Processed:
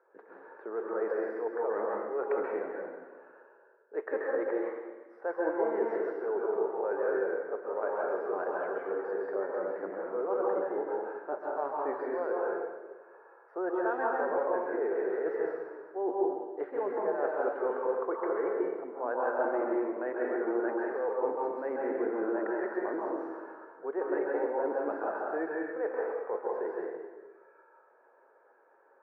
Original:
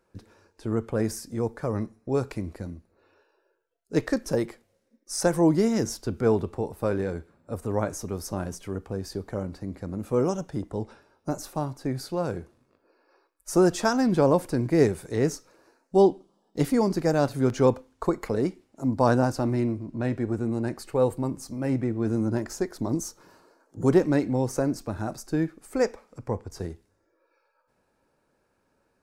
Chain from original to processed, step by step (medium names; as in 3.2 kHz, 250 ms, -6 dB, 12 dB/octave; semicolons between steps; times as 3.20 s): elliptic band-pass 410–1700 Hz, stop band 60 dB; reverse; compression 6:1, threshold -37 dBFS, peak gain reduction 19.5 dB; reverse; plate-style reverb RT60 1.3 s, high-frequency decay 0.95×, pre-delay 120 ms, DRR -3.5 dB; trim +5 dB